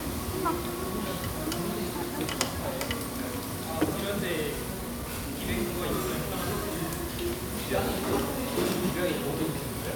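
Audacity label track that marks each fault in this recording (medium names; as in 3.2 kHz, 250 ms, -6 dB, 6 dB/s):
4.730000	5.440000	clipped -31 dBFS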